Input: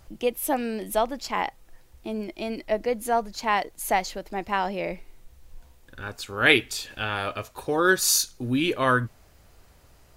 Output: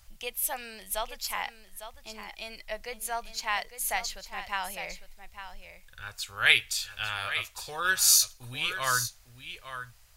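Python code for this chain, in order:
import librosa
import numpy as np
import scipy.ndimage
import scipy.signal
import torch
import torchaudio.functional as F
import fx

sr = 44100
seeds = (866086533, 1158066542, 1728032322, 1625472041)

y = fx.tone_stack(x, sr, knobs='10-0-10')
y = y + 10.0 ** (-11.0 / 20.0) * np.pad(y, (int(853 * sr / 1000.0), 0))[:len(y)]
y = y * librosa.db_to_amplitude(2.0)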